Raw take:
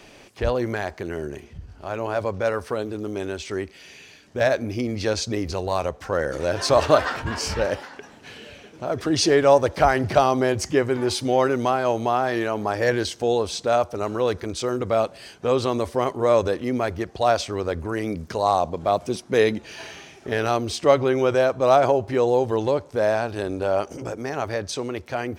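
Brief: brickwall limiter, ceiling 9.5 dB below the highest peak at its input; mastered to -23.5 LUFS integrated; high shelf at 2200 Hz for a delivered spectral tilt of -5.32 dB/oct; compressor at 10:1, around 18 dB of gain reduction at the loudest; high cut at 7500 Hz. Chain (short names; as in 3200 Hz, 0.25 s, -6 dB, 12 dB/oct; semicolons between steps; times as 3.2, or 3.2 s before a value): LPF 7500 Hz; high shelf 2200 Hz -5 dB; compressor 10:1, threshold -30 dBFS; gain +14 dB; limiter -12.5 dBFS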